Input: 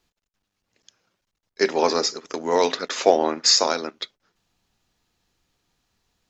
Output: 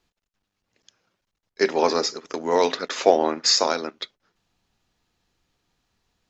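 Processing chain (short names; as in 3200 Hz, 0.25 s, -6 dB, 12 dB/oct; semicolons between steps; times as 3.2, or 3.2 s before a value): high shelf 6900 Hz -6.5 dB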